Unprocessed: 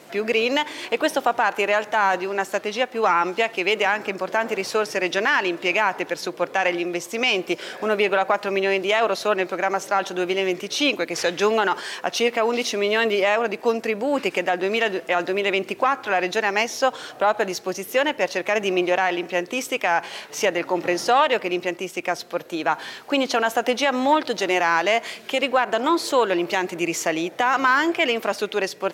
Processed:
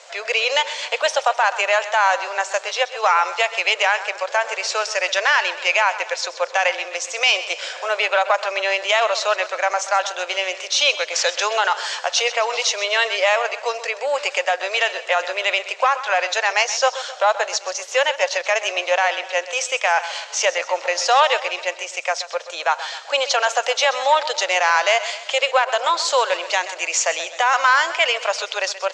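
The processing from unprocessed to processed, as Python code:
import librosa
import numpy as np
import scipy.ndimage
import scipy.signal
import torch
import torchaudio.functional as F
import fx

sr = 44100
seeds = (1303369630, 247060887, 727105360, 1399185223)

y = scipy.signal.sosfilt(scipy.signal.cheby1(4, 1.0, [530.0, 7300.0], 'bandpass', fs=sr, output='sos'), x)
y = fx.high_shelf(y, sr, hz=4300.0, db=10.0)
y = fx.echo_feedback(y, sr, ms=129, feedback_pct=48, wet_db=-14.0)
y = F.gain(torch.from_numpy(y), 2.5).numpy()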